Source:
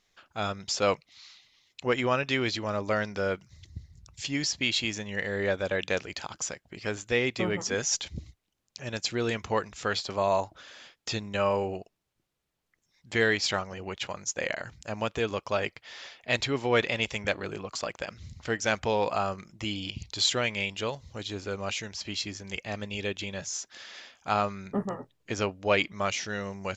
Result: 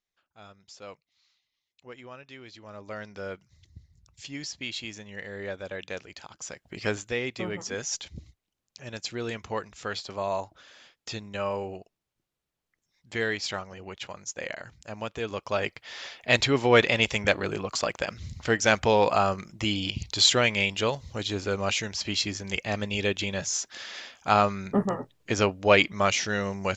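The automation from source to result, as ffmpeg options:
ffmpeg -i in.wav -af "volume=14.5dB,afade=type=in:start_time=2.48:duration=0.77:silence=0.281838,afade=type=in:start_time=6.42:duration=0.42:silence=0.237137,afade=type=out:start_time=6.84:duration=0.31:silence=0.354813,afade=type=in:start_time=15.19:duration=1.03:silence=0.334965" out.wav

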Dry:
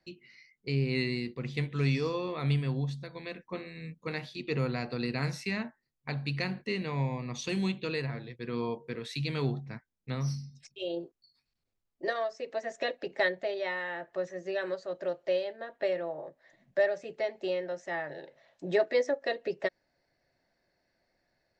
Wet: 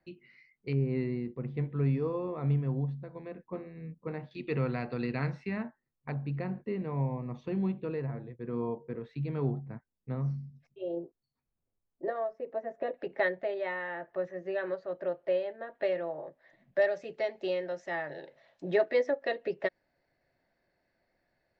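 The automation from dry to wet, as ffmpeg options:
ffmpeg -i in.wav -af "asetnsamples=nb_out_samples=441:pad=0,asendcmd='0.73 lowpass f 1000;4.31 lowpass f 2300;5.27 lowpass f 1500;6.12 lowpass f 1000;12.94 lowpass f 2100;15.75 lowpass f 3300;16.82 lowpass f 5300;18.7 lowpass f 3300',lowpass=2200" out.wav

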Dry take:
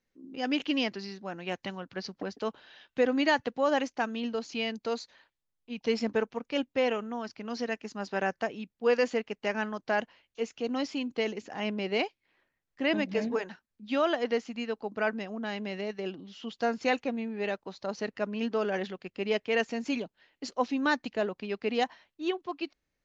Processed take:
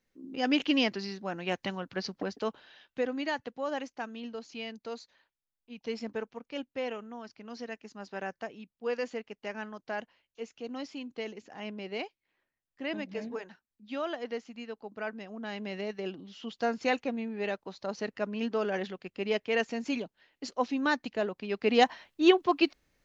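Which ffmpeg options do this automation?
ffmpeg -i in.wav -af "volume=20dB,afade=type=out:start_time=2.08:duration=1.08:silence=0.316228,afade=type=in:start_time=15.15:duration=0.64:silence=0.473151,afade=type=in:start_time=21.44:duration=0.78:silence=0.281838" out.wav

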